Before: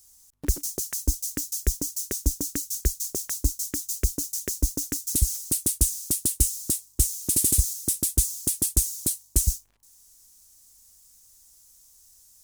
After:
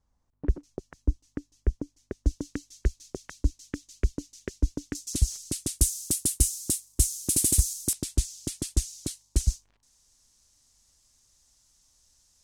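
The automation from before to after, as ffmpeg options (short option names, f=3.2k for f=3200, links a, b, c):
-af "asetnsamples=n=441:p=0,asendcmd='2.26 lowpass f 2600;4.95 lowpass f 6200;5.79 lowpass f 11000;7.93 lowpass f 5100',lowpass=1.1k"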